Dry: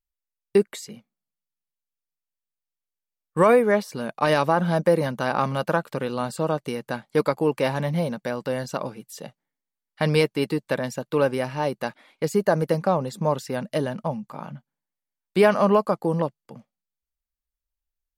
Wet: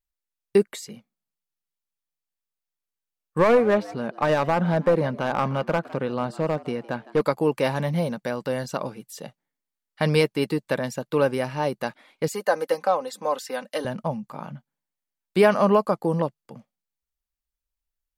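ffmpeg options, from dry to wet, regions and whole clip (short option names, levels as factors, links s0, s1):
-filter_complex "[0:a]asettb=1/sr,asplit=3[s0][s1][s2];[s0]atrim=end=3.384[s3];[s1]atrim=start=3.38:end=7.21,asetpts=PTS-STARTPTS,afade=t=in:d=0.004:c=qsin,afade=t=out:st=3.826:d=0.004:c=qsin,aemphasis=mode=reproduction:type=75fm,aeval=exprs='clip(val(0),-1,0.178)':c=same,asplit=4[s4][s5][s6][s7];[s5]adelay=159,afreqshift=99,volume=0.106[s8];[s6]adelay=318,afreqshift=198,volume=0.0327[s9];[s7]adelay=477,afreqshift=297,volume=0.0102[s10];[s4][s8][s9][s10]amix=inputs=4:normalize=0,atrim=end_sample=168903[s11];[s2]atrim=start=7.206[s12];[s3][s11]acrossfade=d=0.004:c1=hsin:c2=qsin[s13];[s13][s12]acrossfade=d=0.004:c1=qsin:c2=hsin,asettb=1/sr,asplit=3[s14][s15][s16];[s14]atrim=end=12.284[s17];[s15]atrim=start=12.28:end=13.85,asetpts=PTS-STARTPTS,afade=t=in:d=0.004:c=qsin,afade=t=out:st=1.566:d=0.004:c=qsin,highpass=500,aecho=1:1:3.9:0.58,atrim=end_sample=69237[s18];[s16]atrim=start=13.846[s19];[s17][s18]acrossfade=d=0.004:c1=hsin:c2=qsin[s20];[s20][s19]acrossfade=d=0.004:c1=qsin:c2=hsin"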